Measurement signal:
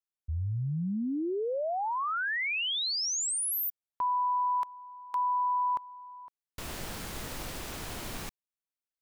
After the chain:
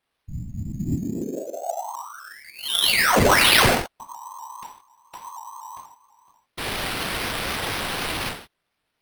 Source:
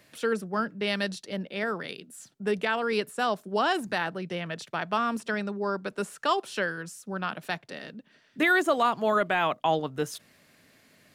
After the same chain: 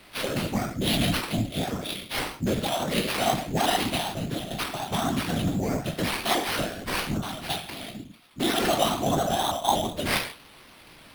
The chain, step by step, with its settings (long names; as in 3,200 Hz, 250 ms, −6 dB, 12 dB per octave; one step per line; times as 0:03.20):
drawn EQ curve 110 Hz 0 dB, 290 Hz +5 dB, 940 Hz −16 dB, 2,400 Hz −25 dB, 3,400 Hz +1 dB, 9,000 Hz +9 dB
reverb whose tail is shaped and stops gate 190 ms falling, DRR −1 dB
random phases in short frames
in parallel at 0 dB: brickwall limiter −16.5 dBFS
on the sum: low shelf with overshoot 570 Hz −7.5 dB, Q 3
sample-rate reduction 7,000 Hz, jitter 0%
pitch modulation by a square or saw wave saw up 4.1 Hz, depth 100 cents